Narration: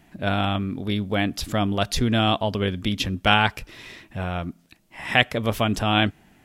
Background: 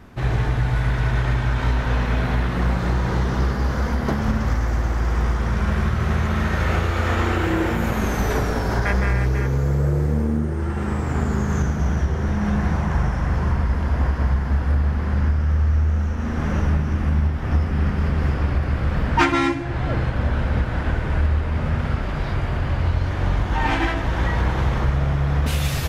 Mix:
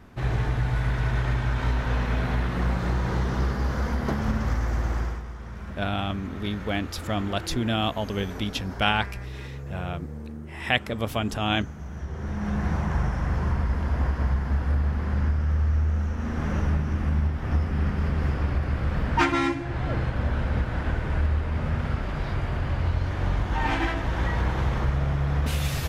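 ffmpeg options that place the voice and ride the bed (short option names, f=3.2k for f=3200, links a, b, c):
-filter_complex "[0:a]adelay=5550,volume=-5dB[a];[1:a]volume=7.5dB,afade=t=out:st=4.97:d=0.25:silence=0.251189,afade=t=in:st=11.9:d=0.84:silence=0.251189[b];[a][b]amix=inputs=2:normalize=0"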